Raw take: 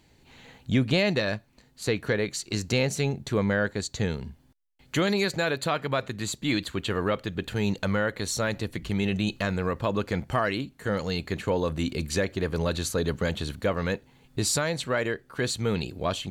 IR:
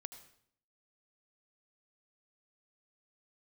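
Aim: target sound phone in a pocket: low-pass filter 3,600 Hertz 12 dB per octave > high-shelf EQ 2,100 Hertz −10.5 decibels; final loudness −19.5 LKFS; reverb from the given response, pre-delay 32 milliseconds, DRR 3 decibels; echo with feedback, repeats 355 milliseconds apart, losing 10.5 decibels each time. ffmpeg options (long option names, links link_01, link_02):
-filter_complex "[0:a]aecho=1:1:355|710|1065:0.299|0.0896|0.0269,asplit=2[link_01][link_02];[1:a]atrim=start_sample=2205,adelay=32[link_03];[link_02][link_03]afir=irnorm=-1:irlink=0,volume=1.5dB[link_04];[link_01][link_04]amix=inputs=2:normalize=0,lowpass=3600,highshelf=frequency=2100:gain=-10.5,volume=8.5dB"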